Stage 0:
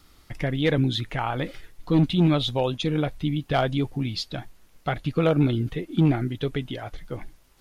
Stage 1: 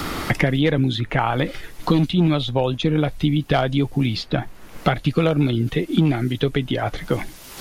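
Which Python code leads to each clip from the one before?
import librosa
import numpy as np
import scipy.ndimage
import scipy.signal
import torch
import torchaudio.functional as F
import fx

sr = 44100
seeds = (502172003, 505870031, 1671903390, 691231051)

y = fx.band_squash(x, sr, depth_pct=100)
y = y * librosa.db_to_amplitude(4.0)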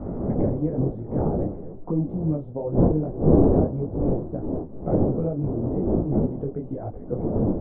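y = fx.dmg_wind(x, sr, seeds[0], corner_hz=370.0, level_db=-16.0)
y = fx.ladder_lowpass(y, sr, hz=790.0, resonance_pct=20)
y = fx.detune_double(y, sr, cents=35)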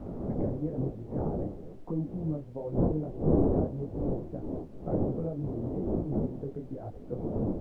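y = fx.dmg_noise_colour(x, sr, seeds[1], colour='brown', level_db=-47.0)
y = y * librosa.db_to_amplitude(-8.0)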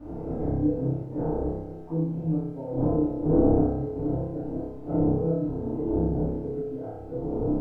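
y = fx.room_flutter(x, sr, wall_m=5.2, rt60_s=0.85)
y = fx.rev_fdn(y, sr, rt60_s=0.46, lf_ratio=0.85, hf_ratio=0.55, size_ms=20.0, drr_db=-7.0)
y = y * librosa.db_to_amplitude(-8.0)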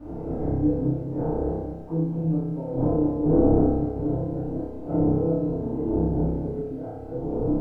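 y = x + 10.0 ** (-9.0 / 20.0) * np.pad(x, (int(225 * sr / 1000.0), 0))[:len(x)]
y = y * librosa.db_to_amplitude(1.5)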